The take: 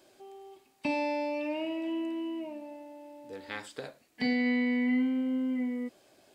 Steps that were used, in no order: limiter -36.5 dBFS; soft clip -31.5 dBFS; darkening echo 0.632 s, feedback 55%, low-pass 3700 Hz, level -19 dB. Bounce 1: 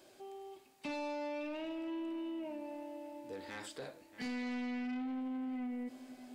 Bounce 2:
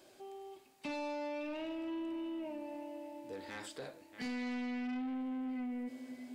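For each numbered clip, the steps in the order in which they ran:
soft clip > darkening echo > limiter; darkening echo > soft clip > limiter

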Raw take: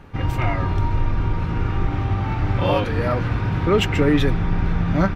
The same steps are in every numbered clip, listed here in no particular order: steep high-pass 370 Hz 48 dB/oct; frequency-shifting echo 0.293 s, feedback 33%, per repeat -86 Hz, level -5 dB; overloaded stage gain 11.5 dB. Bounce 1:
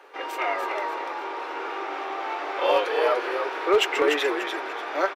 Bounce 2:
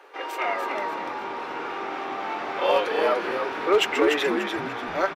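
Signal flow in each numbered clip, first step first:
frequency-shifting echo > steep high-pass > overloaded stage; steep high-pass > overloaded stage > frequency-shifting echo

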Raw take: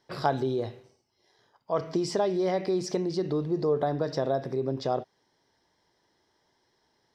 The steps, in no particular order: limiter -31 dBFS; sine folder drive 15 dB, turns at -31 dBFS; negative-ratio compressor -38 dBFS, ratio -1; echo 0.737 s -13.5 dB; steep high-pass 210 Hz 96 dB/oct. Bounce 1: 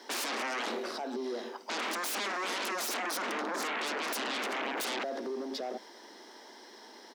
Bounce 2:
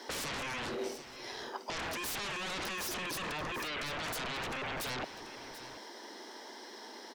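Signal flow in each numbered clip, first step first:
limiter > negative-ratio compressor > echo > sine folder > steep high-pass; steep high-pass > limiter > sine folder > negative-ratio compressor > echo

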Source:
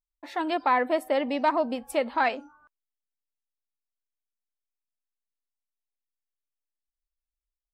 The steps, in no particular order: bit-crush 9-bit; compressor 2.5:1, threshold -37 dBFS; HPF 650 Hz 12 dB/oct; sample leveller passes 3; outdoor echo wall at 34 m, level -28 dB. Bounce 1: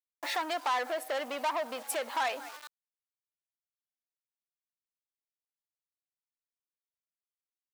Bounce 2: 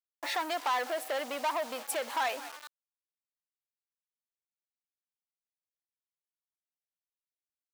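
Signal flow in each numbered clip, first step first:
outdoor echo > bit-crush > compressor > sample leveller > HPF; outdoor echo > compressor > bit-crush > sample leveller > HPF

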